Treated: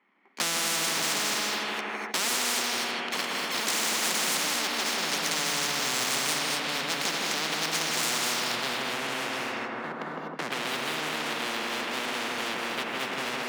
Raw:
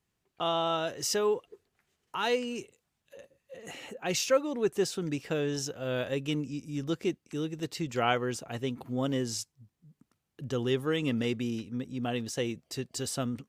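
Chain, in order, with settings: comb filter that takes the minimum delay 0.93 ms; compression, threshold -40 dBFS, peak gain reduction 15 dB; low-pass sweep 2.1 kHz -> 440 Hz, 7.85–8.88 s; waveshaping leveller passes 5; treble shelf 3.1 kHz -10 dB; gated-style reverb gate 270 ms rising, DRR 0.5 dB; saturation -22.5 dBFS, distortion -19 dB; steep high-pass 220 Hz 48 dB/octave; on a send: filtered feedback delay 159 ms, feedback 44%, low-pass 2.4 kHz, level -4 dB; on the sum: spectrum-flattening compressor 10:1; trim +4.5 dB

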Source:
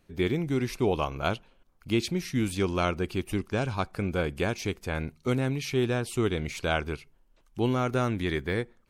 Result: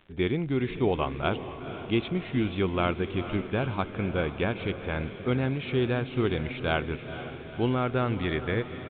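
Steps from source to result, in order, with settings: crackle 66 per s -36 dBFS; resampled via 8 kHz; echo that smears into a reverb 472 ms, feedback 61%, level -11 dB

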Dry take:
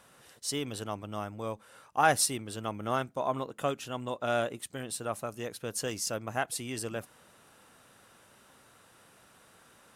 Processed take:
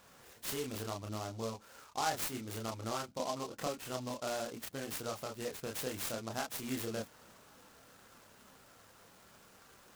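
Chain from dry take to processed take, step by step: compression 2.5:1, threshold -36 dBFS, peak gain reduction 12 dB; chorus voices 6, 0.57 Hz, delay 29 ms, depth 2.7 ms; delay time shaken by noise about 4.6 kHz, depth 0.066 ms; trim +2.5 dB

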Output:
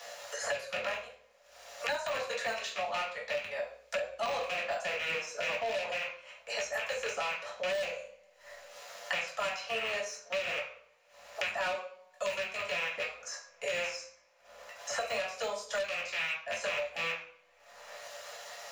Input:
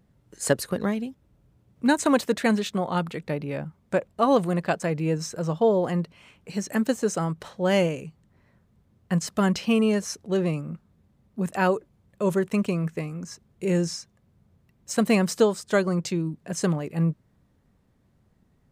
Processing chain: rattle on loud lows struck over -29 dBFS, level -16 dBFS; word length cut 12-bit, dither none; steep high-pass 490 Hz 96 dB/octave; treble shelf 8.3 kHz -8 dB; de-esser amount 85%; transient shaper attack -6 dB, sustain -10 dB; reverberation RT60 0.45 s, pre-delay 3 ms, DRR -5.5 dB; saturation -17 dBFS, distortion -9 dB; three bands compressed up and down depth 100%; trim -8.5 dB

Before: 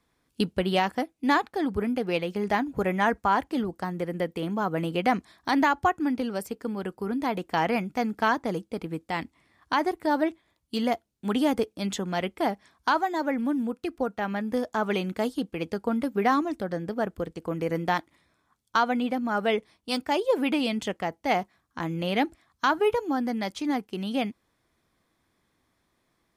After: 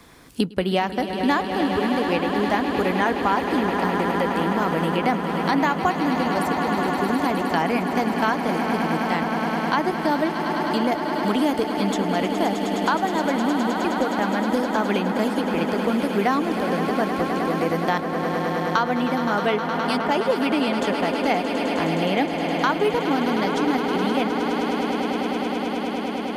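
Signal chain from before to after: echo with a slow build-up 104 ms, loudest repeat 8, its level -12.5 dB; three bands compressed up and down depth 70%; trim +2.5 dB

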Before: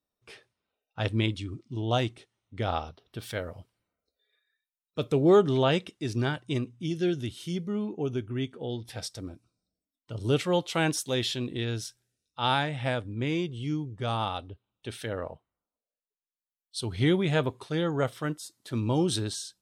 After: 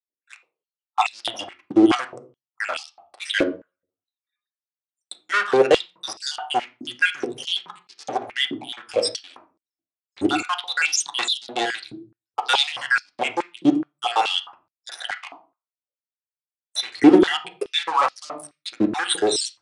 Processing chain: random holes in the spectrogram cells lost 76%; waveshaping leveller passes 5; resampled via 22.05 kHz; on a send at -4 dB: reverberation RT60 0.40 s, pre-delay 4 ms; on the sum: step-sequenced high-pass 4.7 Hz 310–4900 Hz; trim -2 dB

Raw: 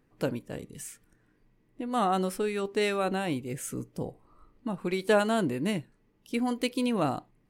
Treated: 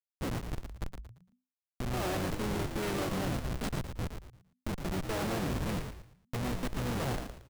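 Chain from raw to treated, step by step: harmony voices -12 st -2 dB, -4 st -6 dB; Schmitt trigger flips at -28.5 dBFS; frequency-shifting echo 114 ms, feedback 32%, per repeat -64 Hz, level -6.5 dB; trim -5 dB

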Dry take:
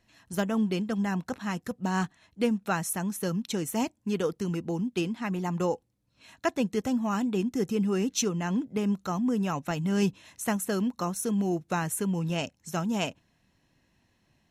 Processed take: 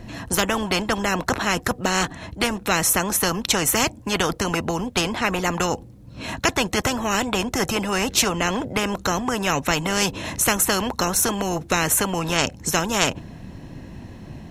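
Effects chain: tilt shelf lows +7.5 dB; spectrum-flattening compressor 4:1; trim +7.5 dB

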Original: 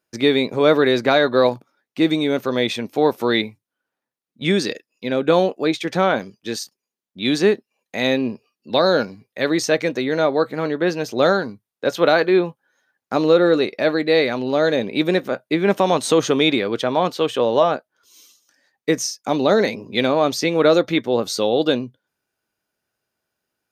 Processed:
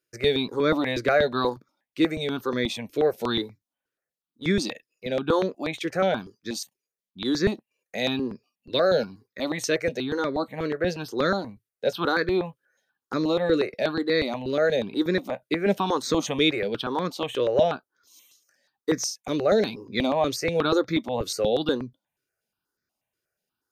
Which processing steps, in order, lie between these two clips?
stepped phaser 8.3 Hz 210–2900 Hz; trim -3 dB

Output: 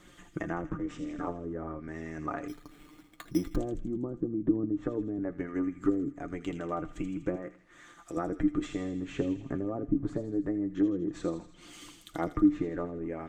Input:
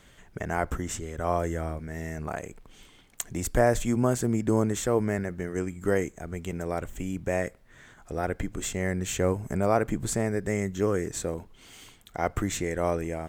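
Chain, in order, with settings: 7.35–8.17 s: bass shelf 320 Hz -11 dB; low-pass that closes with the level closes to 340 Hz, closed at -22 dBFS; harmonic-percussive split harmonic -9 dB; in parallel at -1.5 dB: compression, threshold -43 dBFS, peak gain reduction 18 dB; 0.72–1.28 s: on the sum: ring modulator 140 Hz; small resonant body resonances 300/1200 Hz, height 16 dB, ringing for 95 ms; flange 0.26 Hz, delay 5.5 ms, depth 2.1 ms, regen +43%; feedback echo behind a high-pass 81 ms, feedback 60%, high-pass 3 kHz, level -5 dB; on a send at -18 dB: reverberation RT60 0.60 s, pre-delay 5 ms; 2.48–3.56 s: on the sum: careless resampling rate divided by 8×, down filtered, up hold

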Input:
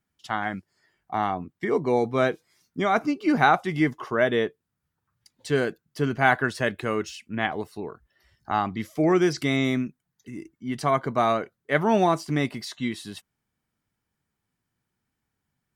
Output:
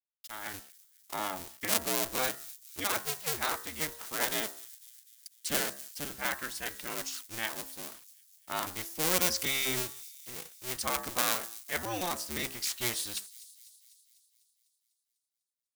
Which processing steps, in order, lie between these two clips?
cycle switcher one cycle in 2, inverted; level rider gain up to 15.5 dB; de-hum 67.07 Hz, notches 29; bit crusher 7-bit; pre-emphasis filter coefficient 0.9; on a send: feedback echo behind a high-pass 249 ms, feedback 58%, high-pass 5.4 kHz, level -14 dB; on the sum: trim -4 dB

